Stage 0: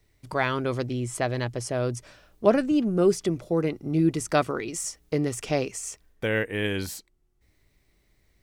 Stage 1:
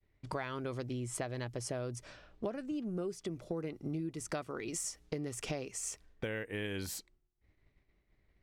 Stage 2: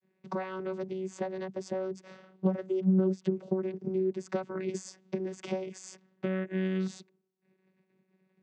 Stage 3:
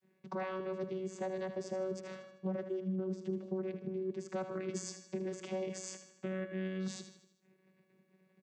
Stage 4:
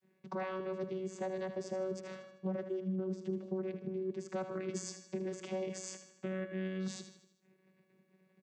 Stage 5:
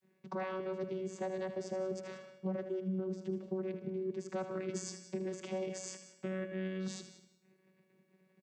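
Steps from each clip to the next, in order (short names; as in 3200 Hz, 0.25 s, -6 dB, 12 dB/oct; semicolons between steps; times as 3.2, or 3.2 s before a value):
compressor 16:1, threshold -33 dBFS, peak gain reduction 21 dB; expander -59 dBFS; low-pass opened by the level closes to 2500 Hz, open at -36.5 dBFS; gain -1.5 dB
vocoder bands 16, saw 188 Hz; gain +8 dB
reverse; compressor 4:1, threshold -38 dBFS, peak gain reduction 14.5 dB; reverse; feedback echo 78 ms, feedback 51%, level -10 dB; reverb RT60 0.25 s, pre-delay 0.118 s, DRR 19.5 dB; gain +2 dB
nothing audible
feedback echo 0.184 s, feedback 16%, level -15 dB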